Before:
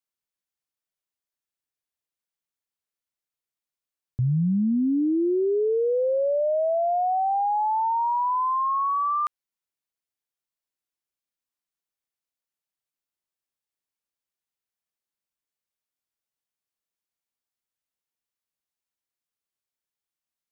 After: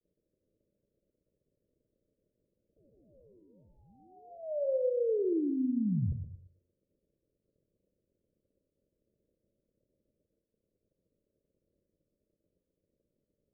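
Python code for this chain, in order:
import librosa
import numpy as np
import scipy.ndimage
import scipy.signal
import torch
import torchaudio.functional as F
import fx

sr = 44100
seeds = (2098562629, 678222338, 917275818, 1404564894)

p1 = fx.law_mismatch(x, sr, coded='A')
p2 = fx.vibrato(p1, sr, rate_hz=0.88, depth_cents=43.0)
p3 = p2 * np.sin(2.0 * np.pi * 1300.0 * np.arange(len(p2)) / sr)
p4 = fx.dmg_crackle(p3, sr, seeds[0], per_s=100.0, level_db=-46.0)
p5 = p4 + fx.echo_feedback(p4, sr, ms=179, feedback_pct=21, wet_db=-8.0, dry=0)
p6 = fx.rev_gated(p5, sr, seeds[1], gate_ms=480, shape='falling', drr_db=9.0)
p7 = fx.stretch_vocoder(p6, sr, factor=0.66)
y = scipy.signal.sosfilt(scipy.signal.butter(16, 590.0, 'lowpass', fs=sr, output='sos'), p7)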